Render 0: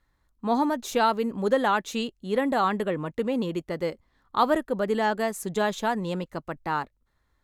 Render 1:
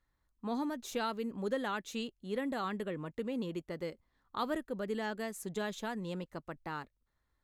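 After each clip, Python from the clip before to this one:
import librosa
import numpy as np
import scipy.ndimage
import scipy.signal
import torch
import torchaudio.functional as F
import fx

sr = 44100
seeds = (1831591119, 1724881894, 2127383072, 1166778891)

y = fx.dynamic_eq(x, sr, hz=830.0, q=1.1, threshold_db=-35.0, ratio=4.0, max_db=-7)
y = y * librosa.db_to_amplitude(-9.0)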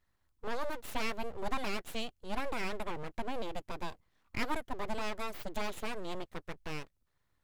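y = np.abs(x)
y = y * librosa.db_to_amplitude(3.0)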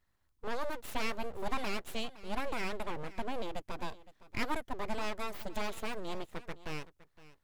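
y = x + 10.0 ** (-18.0 / 20.0) * np.pad(x, (int(514 * sr / 1000.0), 0))[:len(x)]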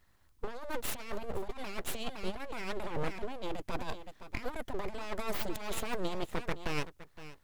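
y = fx.over_compress(x, sr, threshold_db=-37.0, ratio=-0.5)
y = y * librosa.db_to_amplitude(5.0)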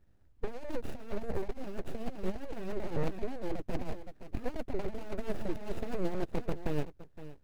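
y = scipy.ndimage.median_filter(x, 41, mode='constant')
y = y * librosa.db_to_amplitude(4.0)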